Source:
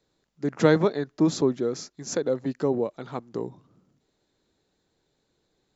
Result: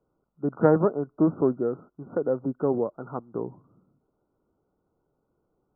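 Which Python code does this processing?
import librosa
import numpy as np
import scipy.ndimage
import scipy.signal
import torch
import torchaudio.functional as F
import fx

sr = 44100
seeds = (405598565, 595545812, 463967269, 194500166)

y = fx.brickwall_lowpass(x, sr, high_hz=1500.0)
y = fx.doppler_dist(y, sr, depth_ms=0.13)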